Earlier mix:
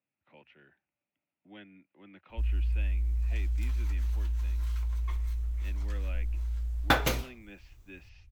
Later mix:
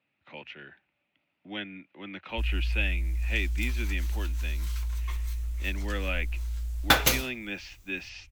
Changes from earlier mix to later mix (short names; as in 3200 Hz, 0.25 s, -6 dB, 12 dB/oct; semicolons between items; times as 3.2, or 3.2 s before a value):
speech +11.0 dB; master: add high shelf 2400 Hz +11.5 dB